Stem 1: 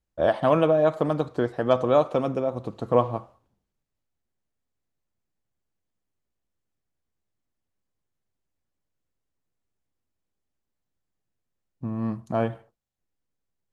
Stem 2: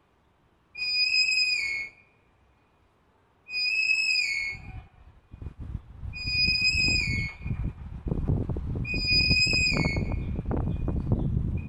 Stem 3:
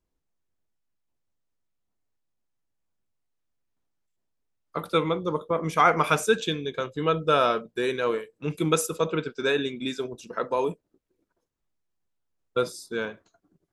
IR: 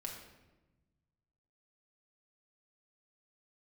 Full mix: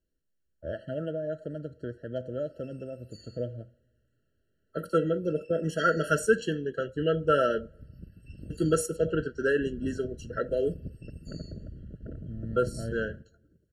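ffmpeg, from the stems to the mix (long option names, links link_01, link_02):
-filter_complex "[0:a]equalizer=frequency=70:width=0.94:gain=13.5,adelay=450,volume=-14dB,asplit=2[link_01][link_02];[link_02]volume=-21.5dB[link_03];[1:a]adelay=1550,volume=-13dB,asplit=2[link_04][link_05];[link_05]volume=-17.5dB[link_06];[2:a]volume=-1dB,asplit=3[link_07][link_08][link_09];[link_07]atrim=end=7.76,asetpts=PTS-STARTPTS,afade=type=out:start_time=7.756:duration=0.004:curve=hsin[link_10];[link_08]atrim=start=7.76:end=8.5,asetpts=PTS-STARTPTS,volume=0[link_11];[link_09]atrim=start=8.5,asetpts=PTS-STARTPTS,afade=type=in:duration=0.004:curve=hsin[link_12];[link_10][link_11][link_12]concat=n=3:v=0:a=1,asplit=2[link_13][link_14];[link_14]volume=-23.5dB[link_15];[3:a]atrim=start_sample=2205[link_16];[link_03][link_06][link_15]amix=inputs=3:normalize=0[link_17];[link_17][link_16]afir=irnorm=-1:irlink=0[link_18];[link_01][link_04][link_13][link_18]amix=inputs=4:normalize=0,afftfilt=real='re*eq(mod(floor(b*sr/1024/660),2),0)':imag='im*eq(mod(floor(b*sr/1024/660),2),0)':win_size=1024:overlap=0.75"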